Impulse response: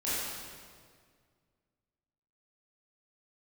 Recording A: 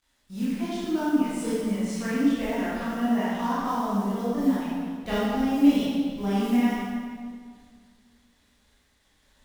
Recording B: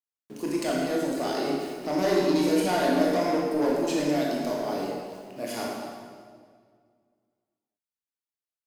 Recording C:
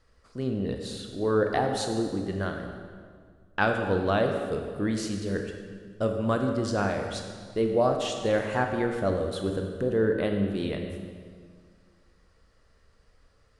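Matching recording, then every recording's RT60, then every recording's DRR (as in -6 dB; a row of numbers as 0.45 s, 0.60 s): A; 1.9 s, 1.9 s, 1.9 s; -11.5 dB, -4.0 dB, 3.5 dB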